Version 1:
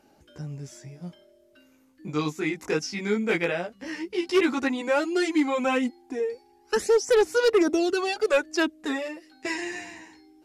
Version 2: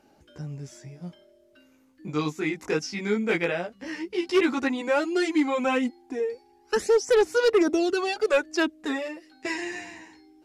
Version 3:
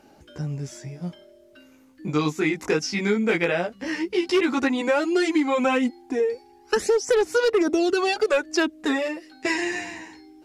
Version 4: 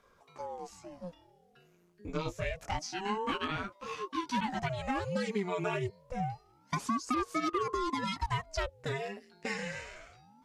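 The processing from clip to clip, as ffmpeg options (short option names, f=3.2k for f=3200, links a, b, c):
-af "highshelf=f=8.5k:g=-5"
-af "acompressor=threshold=-24dB:ratio=6,volume=6.5dB"
-af "aeval=exprs='val(0)*sin(2*PI*440*n/s+440*0.8/0.27*sin(2*PI*0.27*n/s))':c=same,volume=-9dB"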